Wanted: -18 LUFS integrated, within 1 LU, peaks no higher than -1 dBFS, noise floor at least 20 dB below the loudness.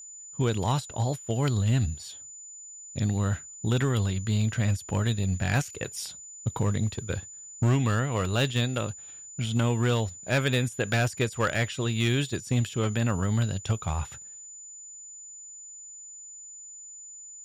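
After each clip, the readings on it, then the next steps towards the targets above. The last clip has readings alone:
clipped 0.6%; flat tops at -18.0 dBFS; steady tone 7000 Hz; tone level -42 dBFS; loudness -28.0 LUFS; peak -18.0 dBFS; loudness target -18.0 LUFS
-> clip repair -18 dBFS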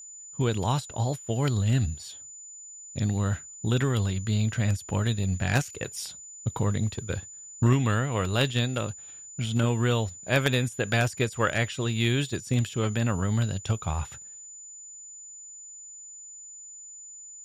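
clipped 0.0%; steady tone 7000 Hz; tone level -42 dBFS
-> notch 7000 Hz, Q 30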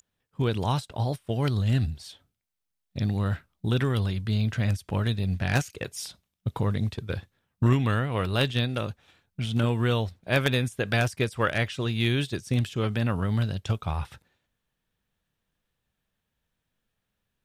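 steady tone none; loudness -27.5 LUFS; peak -9.0 dBFS; loudness target -18.0 LUFS
-> gain +9.5 dB; limiter -1 dBFS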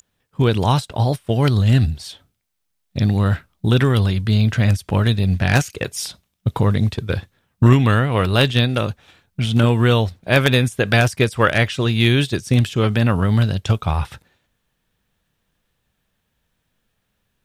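loudness -18.0 LUFS; peak -1.0 dBFS; noise floor -72 dBFS

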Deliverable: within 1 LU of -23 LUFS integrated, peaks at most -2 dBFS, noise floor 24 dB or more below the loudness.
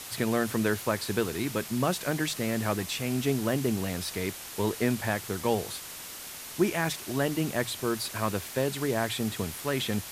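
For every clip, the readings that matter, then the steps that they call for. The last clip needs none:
noise floor -42 dBFS; noise floor target -54 dBFS; loudness -30.0 LUFS; peak -12.5 dBFS; loudness target -23.0 LUFS
-> denoiser 12 dB, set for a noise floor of -42 dBFS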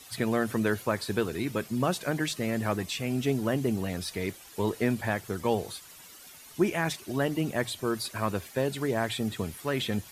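noise floor -50 dBFS; noise floor target -54 dBFS
-> denoiser 6 dB, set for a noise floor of -50 dBFS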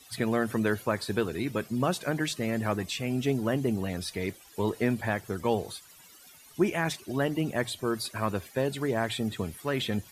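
noise floor -54 dBFS; loudness -30.0 LUFS; peak -13.0 dBFS; loudness target -23.0 LUFS
-> gain +7 dB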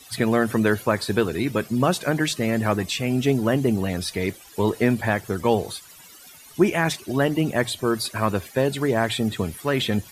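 loudness -23.0 LUFS; peak -6.0 dBFS; noise floor -47 dBFS

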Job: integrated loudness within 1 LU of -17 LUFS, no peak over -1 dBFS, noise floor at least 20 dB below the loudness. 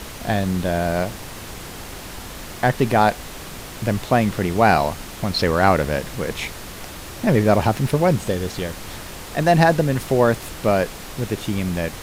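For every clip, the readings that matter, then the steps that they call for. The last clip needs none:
noise floor -36 dBFS; noise floor target -41 dBFS; loudness -20.5 LUFS; peak -1.5 dBFS; loudness target -17.0 LUFS
-> noise print and reduce 6 dB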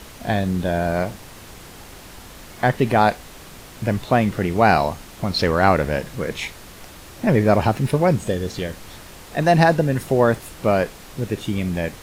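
noise floor -41 dBFS; loudness -20.5 LUFS; peak -1.5 dBFS; loudness target -17.0 LUFS
-> gain +3.5 dB; limiter -1 dBFS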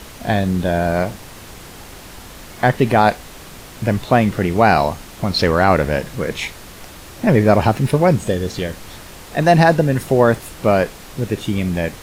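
loudness -17.5 LUFS; peak -1.0 dBFS; noise floor -38 dBFS

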